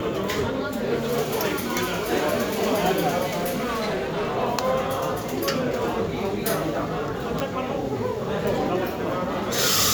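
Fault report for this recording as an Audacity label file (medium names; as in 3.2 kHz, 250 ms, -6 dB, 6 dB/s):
3.250000	4.370000	clipped -22.5 dBFS
7.400000	7.400000	pop -11 dBFS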